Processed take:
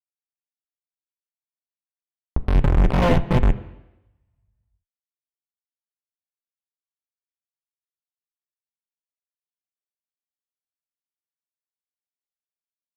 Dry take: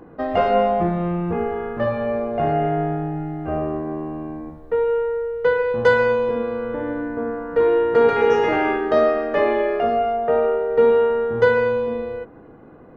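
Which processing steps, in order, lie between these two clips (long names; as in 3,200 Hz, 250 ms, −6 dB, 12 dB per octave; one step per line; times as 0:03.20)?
lower of the sound and its delayed copy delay 9.4 ms
source passing by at 0:03.08, 17 m/s, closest 1.2 metres
flanger 0.63 Hz, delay 7.3 ms, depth 1.3 ms, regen −41%
comparator with hysteresis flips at −37.5 dBFS
low-shelf EQ 65 Hz +7 dB
pitch shifter +9 semitones
linear-phase brick-wall low-pass 1,100 Hz
fuzz pedal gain 53 dB, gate −58 dBFS
on a send at −11 dB: convolution reverb RT60 0.90 s, pre-delay 3 ms
on the sum: downward compressor 1.5 to 1, threshold −21 dBFS, peak gain reduction 3 dB
level +4.5 dB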